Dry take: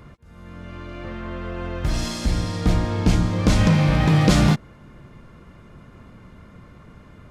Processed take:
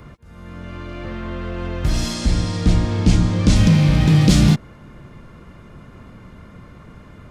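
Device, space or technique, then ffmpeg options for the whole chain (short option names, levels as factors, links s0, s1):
one-band saturation: -filter_complex "[0:a]acrossover=split=380|2500[s0][s1][s2];[s1]asoftclip=type=tanh:threshold=0.0178[s3];[s0][s3][s2]amix=inputs=3:normalize=0,asettb=1/sr,asplit=3[s4][s5][s6];[s4]atrim=end=2.144[s7];[s5]atrim=start=2.14:end=3.56,asetpts=PTS-STARTPTS,afade=t=in:d=0.004:c=qsin,afade=t=out:st=1.416:d=0.004:c=qsin,lowpass=f=10000:w=0.5412,lowpass=f=10000:w=1.3066[s8];[s6]atrim=start=3.556[s9];[s7][s8]acrossfade=d=0.004:c1=hsin:c2=qsin[s10];[s10][s9]acrossfade=d=0.004:c1=qsin:c2=hsin,volume=1.58"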